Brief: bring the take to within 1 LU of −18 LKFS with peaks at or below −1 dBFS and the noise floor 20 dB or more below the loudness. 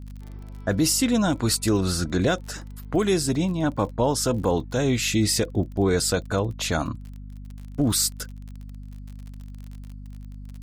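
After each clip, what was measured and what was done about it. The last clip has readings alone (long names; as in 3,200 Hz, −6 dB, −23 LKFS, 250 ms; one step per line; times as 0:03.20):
crackle rate 38 per second; mains hum 50 Hz; hum harmonics up to 250 Hz; level of the hum −35 dBFS; integrated loudness −23.5 LKFS; sample peak −10.5 dBFS; target loudness −18.0 LKFS
→ click removal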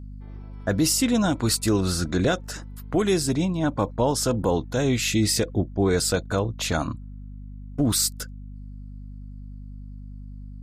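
crackle rate 0.094 per second; mains hum 50 Hz; hum harmonics up to 250 Hz; level of the hum −35 dBFS
→ mains-hum notches 50/100/150/200/250 Hz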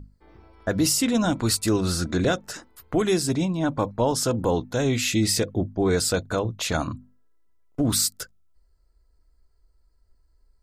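mains hum none found; integrated loudness −24.0 LKFS; sample peak −11.0 dBFS; target loudness −18.0 LKFS
→ level +6 dB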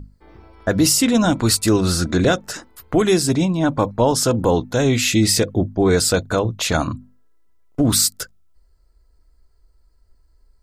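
integrated loudness −18.0 LKFS; sample peak −5.0 dBFS; background noise floor −57 dBFS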